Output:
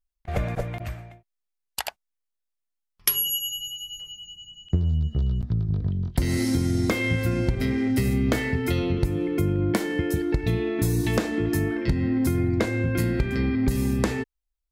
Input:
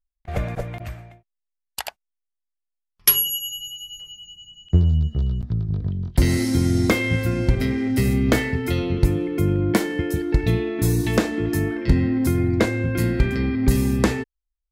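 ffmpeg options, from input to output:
-af "acompressor=threshold=0.112:ratio=6"

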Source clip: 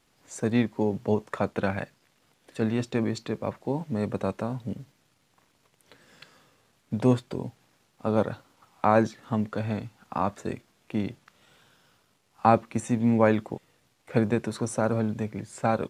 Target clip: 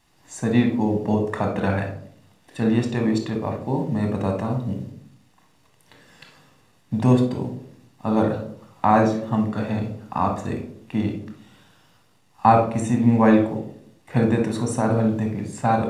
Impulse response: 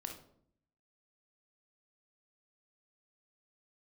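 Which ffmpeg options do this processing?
-filter_complex "[1:a]atrim=start_sample=2205[s0];[0:a][s0]afir=irnorm=-1:irlink=0,volume=2.11"

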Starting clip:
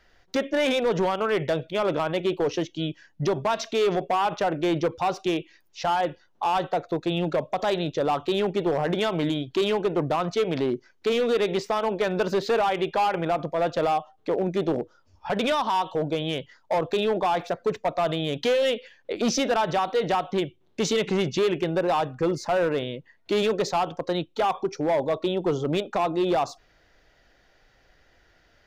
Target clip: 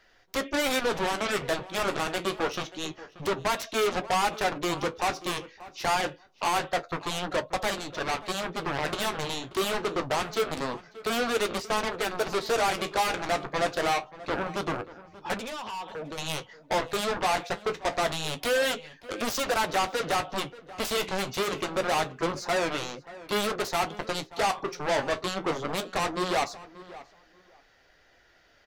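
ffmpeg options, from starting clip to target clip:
-filter_complex "[0:a]asettb=1/sr,asplit=3[s0][s1][s2];[s0]atrim=end=7.704[s3];[s1]atrim=start=7.7:end=8.78,asetpts=PTS-STARTPTS,afade=t=in:d=0.004:c=qsin,afade=t=out:st=1.076:d=0.004:c=qsin,aeval=exprs='if(lt(val(0),0),0.708*val(0),val(0))':c=same[s4];[s2]atrim=start=8.776[s5];[s3][s4]acrossfade=d=0.004:c1=hsin:c2=qsin[s6];[s6][s5]acrossfade=d=0.004:c1=qsin:c2=hsin,asettb=1/sr,asplit=3[s7][s8][s9];[s7]atrim=end=15.364[s10];[s8]atrim=start=15.36:end=16.18,asetpts=PTS-STARTPTS,afade=t=in:d=0.004:c=qsin,afade=t=out:st=0.816:d=0.004:c=qsin,acompressor=threshold=0.0398:ratio=10[s11];[s9]atrim=start=16.176[s12];[s10][s11]acrossfade=d=0.004:c1=hsin:c2=qsin[s13];[s13][s12]acrossfade=d=0.004:c1=qsin:c2=hsin,lowshelf=f=240:g=-9,aeval=exprs='0.178*(cos(1*acos(clip(val(0)/0.178,-1,1)))-cos(1*PI/2))+0.0708*(cos(7*acos(clip(val(0)/0.178,-1,1)))-cos(7*PI/2))':c=same,flanger=delay=9.2:depth=6.8:regen=-46:speed=0.26:shape=sinusoidal,asplit=2[s14][s15];[s15]adelay=583,lowpass=f=2300:p=1,volume=0.141,asplit=2[s16][s17];[s17]adelay=583,lowpass=f=2300:p=1,volume=0.18[s18];[s14][s16][s18]amix=inputs=3:normalize=0"

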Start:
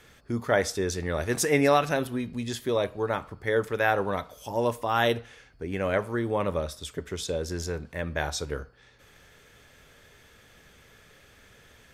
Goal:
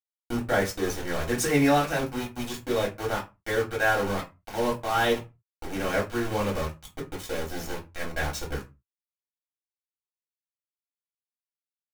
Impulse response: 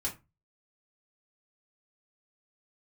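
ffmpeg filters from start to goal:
-filter_complex "[0:a]aeval=exprs='val(0)*gte(abs(val(0)),0.0376)':c=same[s0];[1:a]atrim=start_sample=2205,afade=t=out:st=0.29:d=0.01,atrim=end_sample=13230[s1];[s0][s1]afir=irnorm=-1:irlink=0,volume=0.75"

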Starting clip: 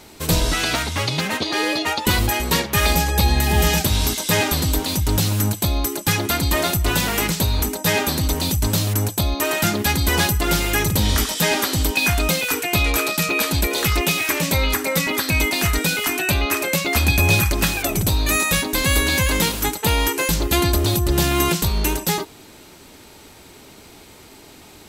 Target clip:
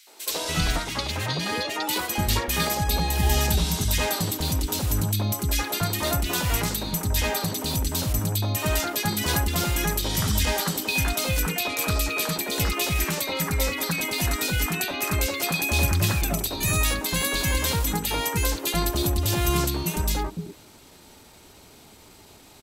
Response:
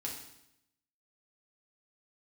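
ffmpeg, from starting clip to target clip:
-filter_complex "[0:a]atempo=1.1,acrossover=split=340|2000[s0][s1][s2];[s1]adelay=70[s3];[s0]adelay=290[s4];[s4][s3][s2]amix=inputs=3:normalize=0,volume=0.596"

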